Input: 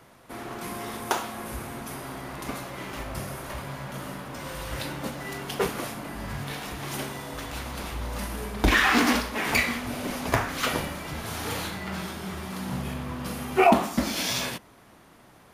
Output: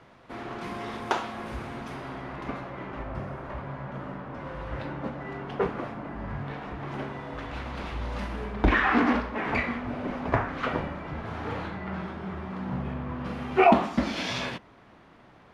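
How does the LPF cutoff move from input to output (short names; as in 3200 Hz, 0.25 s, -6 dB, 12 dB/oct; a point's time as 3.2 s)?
1.85 s 3800 Hz
2.91 s 1600 Hz
6.88 s 1600 Hz
8.1 s 3700 Hz
8.83 s 1700 Hz
13 s 1700 Hz
13.6 s 3300 Hz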